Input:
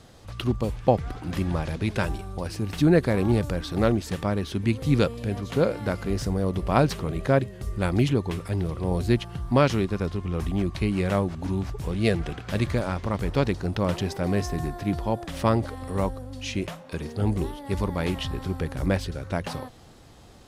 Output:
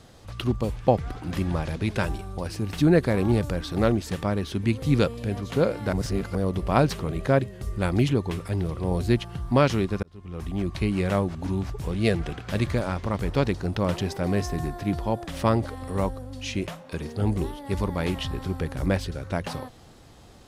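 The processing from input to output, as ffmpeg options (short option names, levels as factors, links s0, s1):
-filter_complex "[0:a]asplit=4[s0][s1][s2][s3];[s0]atrim=end=5.932[s4];[s1]atrim=start=5.928:end=6.352,asetpts=PTS-STARTPTS,areverse[s5];[s2]atrim=start=6.348:end=10.03,asetpts=PTS-STARTPTS,afade=t=out:st=3.678:d=0.004:c=hsin[s6];[s3]atrim=start=10.03,asetpts=PTS-STARTPTS,afade=t=in:d=0.74[s7];[s4][s5]acrossfade=d=0.004:c1=hsin:c2=hsin[s8];[s6][s7]concat=n=2:v=0:a=1[s9];[s8][s9]acrossfade=d=0.004:c1=hsin:c2=hsin"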